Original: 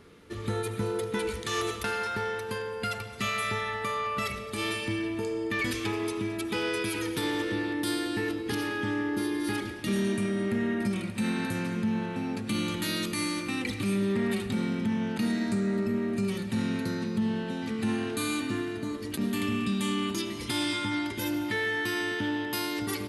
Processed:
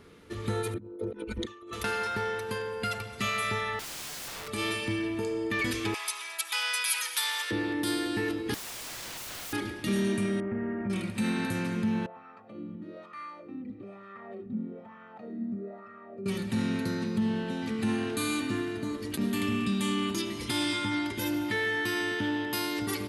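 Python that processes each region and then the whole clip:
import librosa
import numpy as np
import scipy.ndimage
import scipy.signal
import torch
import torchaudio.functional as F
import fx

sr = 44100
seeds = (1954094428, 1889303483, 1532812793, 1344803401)

y = fx.chain(x, sr, fx.envelope_sharpen(power=2.0),
    fx.comb(ms=3.3, depth=0.76),
    fx.over_compress(threshold_db=-37.0, ratio=-0.5), at=(0.74, 1.73))
y = fx.chain(y, sr, fx.lowpass(hz=2600.0, slope=6),
    fx.low_shelf(hz=74.0, db=-10.0),
    fx.overflow_wrap(gain_db=35.0), at=(3.79, 4.48))
y = fx.chain(y, sr, fx.cheby2_highpass(hz=240.0, order=4, stop_db=60),
    fx.high_shelf(hz=3500.0, db=11.5), at=(5.94, 7.51))
y = fx.chain(y, sr, fx.highpass(hz=230.0, slope=12),
    fx.doubler(ms=14.0, db=-13),
    fx.overflow_wrap(gain_db=35.5), at=(8.54, 9.53))
y = fx.chain(y, sr, fx.gaussian_blur(sigma=5.0),
    fx.peak_eq(hz=200.0, db=-4.5, octaves=2.6), at=(10.4, 10.9))
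y = fx.chain(y, sr, fx.lowpass(hz=2600.0, slope=6),
    fx.comb(ms=1.6, depth=0.48),
    fx.wah_lfo(hz=1.1, low_hz=230.0, high_hz=1300.0, q=3.6), at=(12.06, 16.26))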